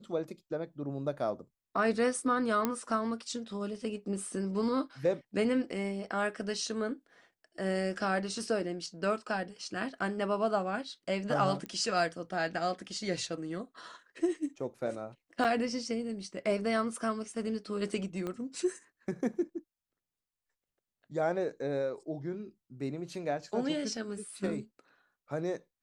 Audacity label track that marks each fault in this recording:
2.650000	2.650000	pop -15 dBFS
11.660000	11.660000	pop -25 dBFS
15.440000	15.450000	dropout 7 ms
18.270000	18.270000	pop -24 dBFS

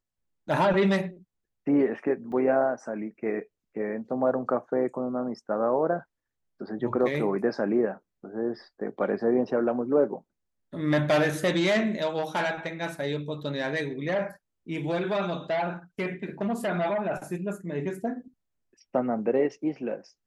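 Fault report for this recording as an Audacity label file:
2.320000	2.320000	dropout 3.6 ms

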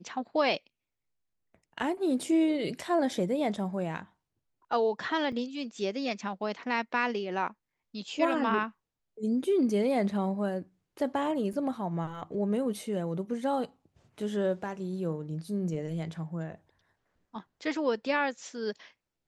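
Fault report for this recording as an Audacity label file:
5.320000	5.320000	dropout 4.5 ms
11.530000	11.530000	dropout 3.4 ms

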